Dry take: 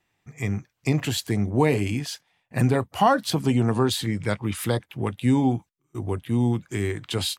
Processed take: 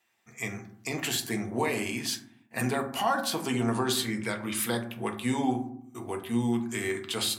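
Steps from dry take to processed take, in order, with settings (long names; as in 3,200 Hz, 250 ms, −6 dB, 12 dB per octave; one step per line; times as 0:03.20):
high-pass filter 820 Hz 6 dB per octave
high-shelf EQ 7,800 Hz +5.5 dB
brickwall limiter −19.5 dBFS, peak gain reduction 9 dB
on a send: convolution reverb RT60 0.70 s, pre-delay 4 ms, DRR 3 dB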